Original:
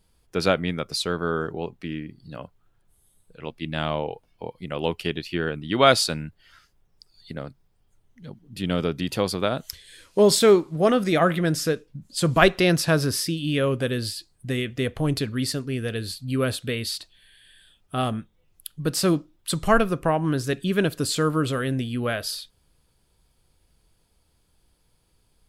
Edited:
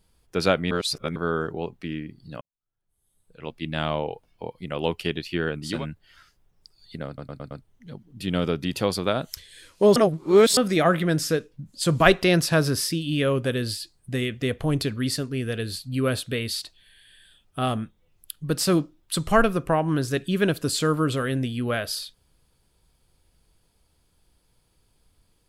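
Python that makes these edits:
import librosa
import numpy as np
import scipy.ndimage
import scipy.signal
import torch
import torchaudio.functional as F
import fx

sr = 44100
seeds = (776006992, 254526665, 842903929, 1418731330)

y = fx.edit(x, sr, fx.reverse_span(start_s=0.71, length_s=0.45),
    fx.fade_in_span(start_s=2.41, length_s=1.11, curve='qua'),
    fx.cut(start_s=5.74, length_s=0.36, crossfade_s=0.24),
    fx.stutter_over(start_s=7.43, slice_s=0.11, count=5),
    fx.reverse_span(start_s=10.32, length_s=0.61), tone=tone)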